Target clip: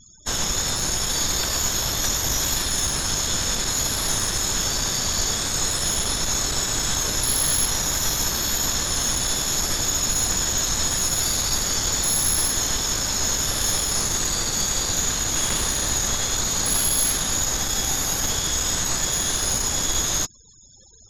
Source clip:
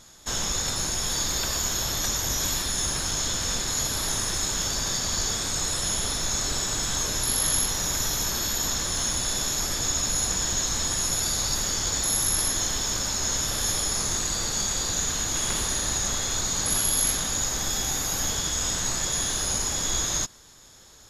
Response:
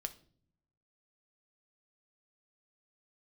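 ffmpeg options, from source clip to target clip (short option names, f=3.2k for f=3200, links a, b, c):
-af "aeval=exprs='0.299*(cos(1*acos(clip(val(0)/0.299,-1,1)))-cos(1*PI/2))+0.0376*(cos(5*acos(clip(val(0)/0.299,-1,1)))-cos(5*PI/2))+0.0473*(cos(6*acos(clip(val(0)/0.299,-1,1)))-cos(6*PI/2))+0.00944*(cos(8*acos(clip(val(0)/0.299,-1,1)))-cos(8*PI/2))':c=same,afftfilt=real='re*gte(hypot(re,im),0.00794)':imag='im*gte(hypot(re,im),0.00794)':win_size=1024:overlap=0.75"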